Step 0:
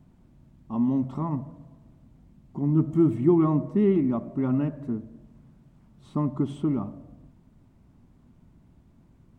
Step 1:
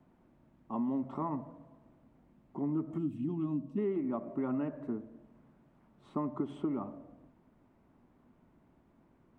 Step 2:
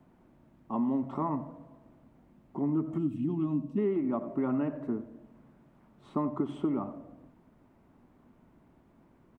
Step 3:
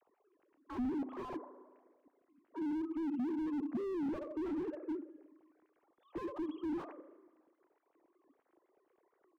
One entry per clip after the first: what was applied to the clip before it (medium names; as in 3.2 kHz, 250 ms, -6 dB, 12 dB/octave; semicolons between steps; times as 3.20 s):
time-frequency box 2.98–3.78 s, 310–2400 Hz -18 dB; three-band isolator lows -15 dB, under 270 Hz, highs -13 dB, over 2.6 kHz; compression 6:1, threshold -30 dBFS, peak gain reduction 9.5 dB
delay 91 ms -16 dB; trim +4 dB
formants replaced by sine waves; spring tank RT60 1.4 s, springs 35 ms, chirp 65 ms, DRR 17 dB; slew-rate limiter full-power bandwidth 5.6 Hz